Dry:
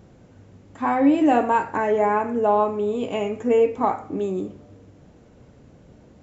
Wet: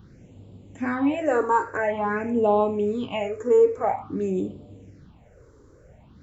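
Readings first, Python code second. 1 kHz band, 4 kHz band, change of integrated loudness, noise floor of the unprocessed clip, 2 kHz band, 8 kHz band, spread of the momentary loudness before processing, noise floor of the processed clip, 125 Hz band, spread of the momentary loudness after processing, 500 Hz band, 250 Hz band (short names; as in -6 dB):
-4.0 dB, -2.0 dB, -2.5 dB, -51 dBFS, 0.0 dB, n/a, 9 LU, -53 dBFS, +1.0 dB, 10 LU, -0.5 dB, -4.5 dB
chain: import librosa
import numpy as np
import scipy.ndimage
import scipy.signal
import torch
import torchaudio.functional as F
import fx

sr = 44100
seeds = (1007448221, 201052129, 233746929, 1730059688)

y = fx.phaser_stages(x, sr, stages=6, low_hz=180.0, high_hz=1700.0, hz=0.49, feedback_pct=25)
y = y * librosa.db_to_amplitude(1.5)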